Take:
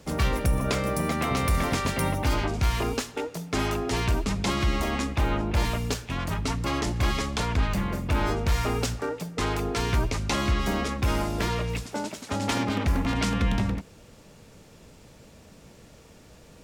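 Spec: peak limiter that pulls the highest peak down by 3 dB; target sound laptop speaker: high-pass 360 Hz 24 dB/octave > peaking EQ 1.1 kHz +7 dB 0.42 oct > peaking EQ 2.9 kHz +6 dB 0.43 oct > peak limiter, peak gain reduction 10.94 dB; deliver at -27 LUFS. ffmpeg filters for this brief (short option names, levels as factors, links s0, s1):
-af "alimiter=limit=0.133:level=0:latency=1,highpass=f=360:w=0.5412,highpass=f=360:w=1.3066,equalizer=f=1100:t=o:w=0.42:g=7,equalizer=f=2900:t=o:w=0.43:g=6,volume=2.37,alimiter=limit=0.133:level=0:latency=1"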